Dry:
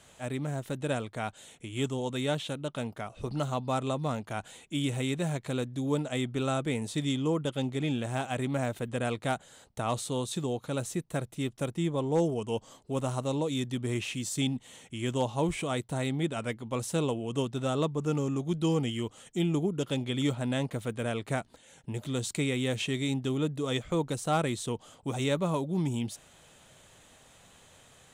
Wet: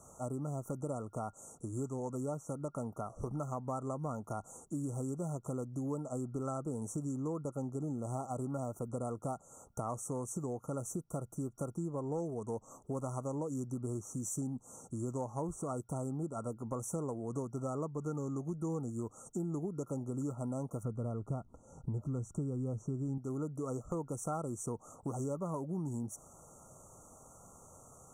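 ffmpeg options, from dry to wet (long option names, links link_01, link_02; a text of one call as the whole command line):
ffmpeg -i in.wav -filter_complex "[0:a]asettb=1/sr,asplit=3[link_01][link_02][link_03];[link_01]atrim=end=20.834[link_04];[link_02]atrim=start=20.83:end=23.18,asetpts=PTS-STARTPTS,afade=type=in:duration=0.004:curve=qsin,afade=type=out:start_time=2.346:duration=0.004:curve=qsin,aemphasis=mode=reproduction:type=bsi[link_05];[link_03]atrim=start=23.176[link_06];[link_04][link_05]acrossfade=duration=0.004:curve1=hsin:curve2=qsin[link_07];[link_07][link_06]acrossfade=duration=0.004:curve1=qsin:curve2=hsin,afftfilt=real='re*(1-between(b*sr/4096,1400,5600))':imag='im*(1-between(b*sr/4096,1400,5600))':win_size=4096:overlap=0.75,equalizer=frequency=1700:width=1.5:gain=2.5,acompressor=threshold=-38dB:ratio=4,volume=1.5dB" out.wav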